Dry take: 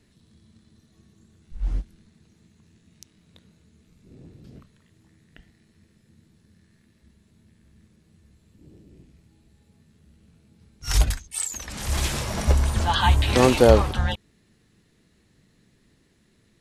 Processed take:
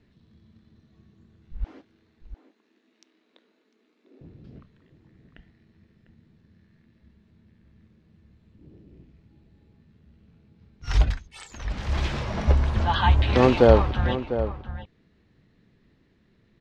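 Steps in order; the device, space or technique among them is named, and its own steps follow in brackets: 1.64–4.21 s: steep high-pass 260 Hz 48 dB/octave; shout across a valley (distance through air 220 m; echo from a far wall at 120 m, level -11 dB)

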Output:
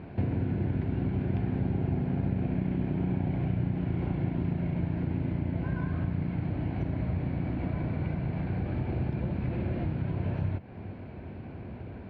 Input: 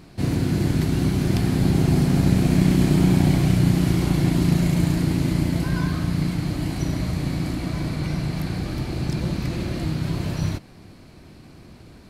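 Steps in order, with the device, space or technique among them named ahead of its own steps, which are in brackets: bass amplifier (compression 4:1, threshold -33 dBFS, peak gain reduction 17.5 dB; cabinet simulation 63–2200 Hz, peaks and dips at 89 Hz +4 dB, 160 Hz -5 dB, 310 Hz -5 dB, 1.2 kHz -10 dB, 1.9 kHz -6 dB); trim +6 dB

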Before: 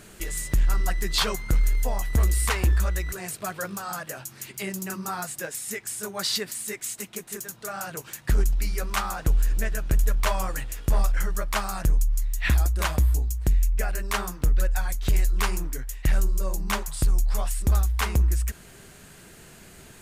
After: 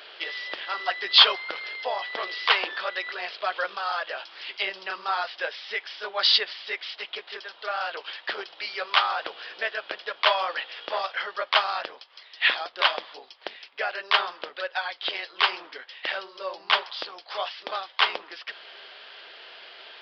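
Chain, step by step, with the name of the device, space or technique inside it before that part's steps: musical greeting card (resampled via 11.025 kHz; high-pass 520 Hz 24 dB/octave; peaking EQ 3.2 kHz +10 dB 0.4 oct); trim +5.5 dB

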